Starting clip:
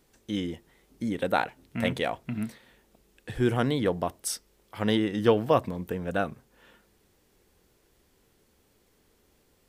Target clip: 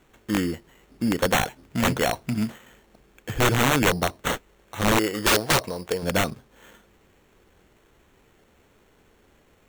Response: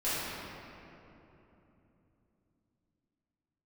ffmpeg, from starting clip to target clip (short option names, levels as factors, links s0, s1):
-filter_complex "[0:a]acrusher=samples=9:mix=1:aa=0.000001,asettb=1/sr,asplit=3[s0][s1][s2];[s0]atrim=end=4.994[s3];[s1]atrim=start=4.99:end=6.03,asetpts=PTS-STARTPTS,afade=t=in:d=0.004:c=qsin,afade=t=out:st=1.036:d=0.004:c=qsin,lowshelf=f=340:t=q:w=1.5:g=-8[s4];[s2]atrim=start=6.026[s5];[s3][s4]acrossfade=d=0.004:c1=hsin:c2=qsin[s6];[s6][s5]acrossfade=d=0.004:c1=qsin:c2=hsin,aeval=exprs='(mod(9.44*val(0)+1,2)-1)/9.44':c=same,volume=2.11"